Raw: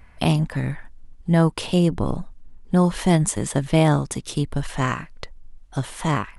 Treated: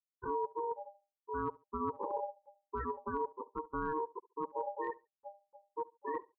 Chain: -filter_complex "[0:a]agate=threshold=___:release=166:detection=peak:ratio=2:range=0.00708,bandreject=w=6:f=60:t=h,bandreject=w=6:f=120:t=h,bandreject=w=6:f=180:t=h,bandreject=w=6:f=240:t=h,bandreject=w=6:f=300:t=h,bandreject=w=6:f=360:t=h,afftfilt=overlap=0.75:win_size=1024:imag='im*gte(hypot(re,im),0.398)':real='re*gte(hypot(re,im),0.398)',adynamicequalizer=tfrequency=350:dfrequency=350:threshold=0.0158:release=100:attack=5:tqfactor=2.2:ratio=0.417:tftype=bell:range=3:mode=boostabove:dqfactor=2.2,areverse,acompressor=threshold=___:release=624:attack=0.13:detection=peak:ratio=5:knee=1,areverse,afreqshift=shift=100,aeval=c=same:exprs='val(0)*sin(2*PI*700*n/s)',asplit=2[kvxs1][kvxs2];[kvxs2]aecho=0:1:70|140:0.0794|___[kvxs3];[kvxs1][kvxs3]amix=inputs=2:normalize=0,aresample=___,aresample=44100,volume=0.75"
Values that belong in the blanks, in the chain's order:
0.0141, 0.0447, 0.0167, 11025